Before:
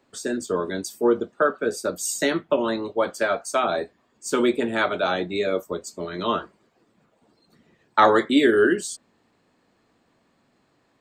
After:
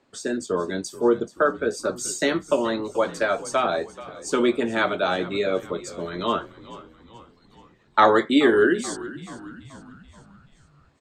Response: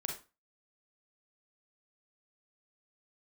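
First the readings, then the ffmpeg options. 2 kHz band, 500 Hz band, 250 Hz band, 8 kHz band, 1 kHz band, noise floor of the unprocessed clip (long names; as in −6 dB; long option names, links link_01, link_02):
0.0 dB, 0.0 dB, 0.0 dB, −1.5 dB, 0.0 dB, −66 dBFS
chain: -filter_complex "[0:a]lowpass=8700,asplit=6[link_01][link_02][link_03][link_04][link_05][link_06];[link_02]adelay=431,afreqshift=-54,volume=-17dB[link_07];[link_03]adelay=862,afreqshift=-108,volume=-22.5dB[link_08];[link_04]adelay=1293,afreqshift=-162,volume=-28dB[link_09];[link_05]adelay=1724,afreqshift=-216,volume=-33.5dB[link_10];[link_06]adelay=2155,afreqshift=-270,volume=-39.1dB[link_11];[link_01][link_07][link_08][link_09][link_10][link_11]amix=inputs=6:normalize=0"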